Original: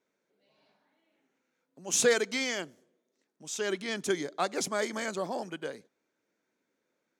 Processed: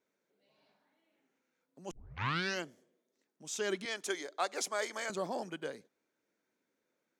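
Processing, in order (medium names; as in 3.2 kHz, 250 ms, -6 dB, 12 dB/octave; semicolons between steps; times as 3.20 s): 1.91 s: tape start 0.72 s; 3.85–5.10 s: high-pass 490 Hz 12 dB/octave; trim -3 dB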